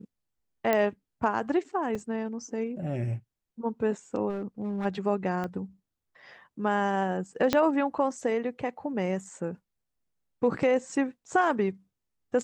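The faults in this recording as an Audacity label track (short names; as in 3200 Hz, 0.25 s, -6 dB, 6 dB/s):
0.730000	0.730000	pop -12 dBFS
1.950000	1.950000	gap 3.9 ms
4.290000	4.860000	clipped -28 dBFS
5.440000	5.440000	gap 2.5 ms
7.530000	7.530000	pop -8 dBFS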